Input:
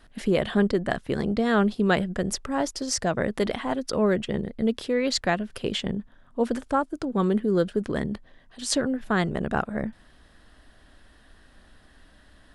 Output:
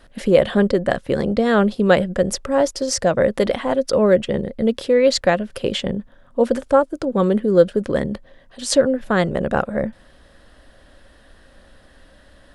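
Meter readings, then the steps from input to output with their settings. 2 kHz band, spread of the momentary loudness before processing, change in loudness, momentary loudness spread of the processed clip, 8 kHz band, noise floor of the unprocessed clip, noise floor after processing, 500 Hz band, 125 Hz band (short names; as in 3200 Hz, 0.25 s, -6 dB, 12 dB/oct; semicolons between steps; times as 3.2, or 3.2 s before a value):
+4.5 dB, 7 LU, +7.0 dB, 8 LU, +4.5 dB, -56 dBFS, -51 dBFS, +10.0 dB, +4.5 dB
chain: bell 540 Hz +11.5 dB 0.26 oct; gain +4.5 dB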